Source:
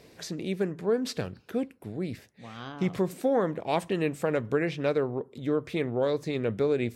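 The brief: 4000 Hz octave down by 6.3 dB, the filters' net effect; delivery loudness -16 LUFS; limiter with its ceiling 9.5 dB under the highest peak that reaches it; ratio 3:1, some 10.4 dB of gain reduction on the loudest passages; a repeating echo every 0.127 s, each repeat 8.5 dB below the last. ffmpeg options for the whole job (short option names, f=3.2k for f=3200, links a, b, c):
-af "equalizer=f=4k:t=o:g=-8,acompressor=threshold=-36dB:ratio=3,alimiter=level_in=8.5dB:limit=-24dB:level=0:latency=1,volume=-8.5dB,aecho=1:1:127|254|381|508:0.376|0.143|0.0543|0.0206,volume=25.5dB"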